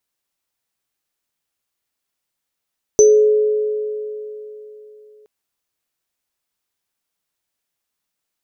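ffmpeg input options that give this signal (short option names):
-f lavfi -i "aevalsrc='0.531*pow(10,-3*t/3.4)*sin(2*PI*425*t)+0.0596*pow(10,-3*t/3.52)*sin(2*PI*550*t)+0.266*pow(10,-3*t/0.29)*sin(2*PI*6090*t)':d=2.27:s=44100"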